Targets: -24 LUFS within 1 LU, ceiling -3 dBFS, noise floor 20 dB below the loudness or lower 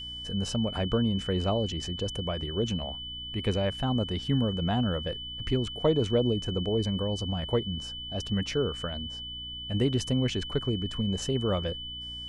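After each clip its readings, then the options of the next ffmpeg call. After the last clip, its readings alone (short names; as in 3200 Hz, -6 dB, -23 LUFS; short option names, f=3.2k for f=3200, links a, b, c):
hum 60 Hz; harmonics up to 300 Hz; hum level -46 dBFS; steady tone 3000 Hz; tone level -37 dBFS; loudness -29.5 LUFS; peak -13.0 dBFS; loudness target -24.0 LUFS
-> -af "bandreject=f=60:t=h:w=4,bandreject=f=120:t=h:w=4,bandreject=f=180:t=h:w=4,bandreject=f=240:t=h:w=4,bandreject=f=300:t=h:w=4"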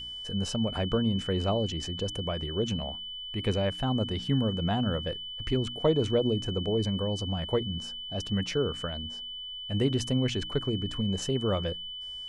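hum none; steady tone 3000 Hz; tone level -37 dBFS
-> -af "bandreject=f=3k:w=30"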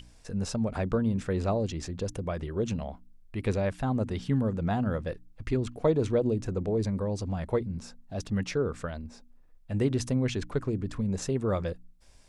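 steady tone none; loudness -30.5 LUFS; peak -13.5 dBFS; loudness target -24.0 LUFS
-> -af "volume=6.5dB"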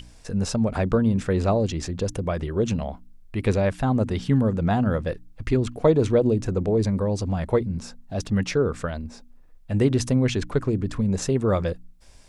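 loudness -24.0 LUFS; peak -7.0 dBFS; noise floor -49 dBFS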